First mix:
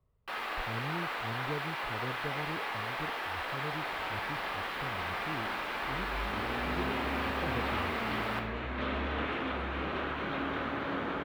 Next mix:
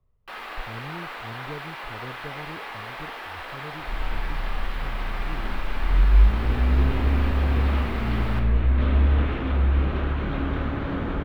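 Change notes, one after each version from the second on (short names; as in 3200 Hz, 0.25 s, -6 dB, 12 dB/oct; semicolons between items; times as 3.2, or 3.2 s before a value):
second sound: remove HPF 570 Hz 6 dB/oct; master: remove HPF 67 Hz 6 dB/oct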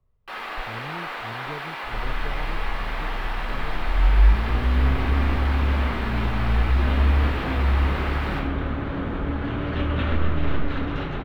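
first sound: send +6.0 dB; second sound: entry -1.95 s; master: add high shelf 9200 Hz -5 dB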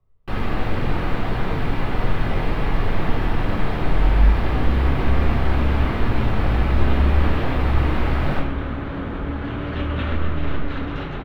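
speech: send on; first sound: remove HPF 860 Hz 12 dB/oct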